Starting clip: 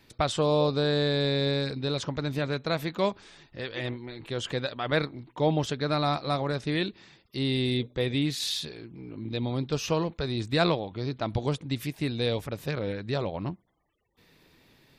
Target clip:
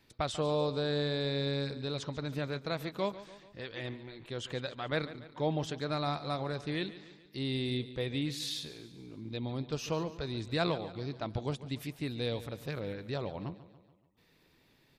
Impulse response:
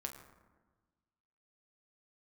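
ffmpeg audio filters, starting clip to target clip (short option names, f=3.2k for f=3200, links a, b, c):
-af "aecho=1:1:143|286|429|572|715:0.168|0.0873|0.0454|0.0236|0.0123,volume=-7dB"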